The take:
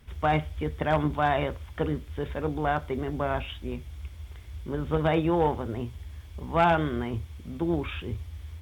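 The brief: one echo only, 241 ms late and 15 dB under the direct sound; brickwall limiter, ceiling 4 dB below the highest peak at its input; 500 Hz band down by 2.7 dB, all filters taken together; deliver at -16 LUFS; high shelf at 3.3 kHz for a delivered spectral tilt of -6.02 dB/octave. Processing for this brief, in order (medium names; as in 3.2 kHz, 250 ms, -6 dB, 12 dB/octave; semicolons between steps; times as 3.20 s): peaking EQ 500 Hz -3.5 dB; treble shelf 3.3 kHz -3 dB; peak limiter -17.5 dBFS; delay 241 ms -15 dB; trim +15.5 dB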